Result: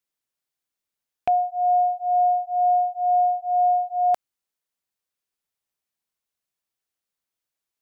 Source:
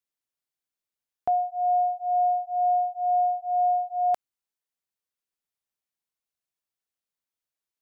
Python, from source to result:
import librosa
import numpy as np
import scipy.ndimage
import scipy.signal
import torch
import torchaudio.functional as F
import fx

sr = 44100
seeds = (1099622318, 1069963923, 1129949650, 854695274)

y = fx.rattle_buzz(x, sr, strikes_db=-41.0, level_db=-24.0)
y = y * librosa.db_to_amplitude(3.5)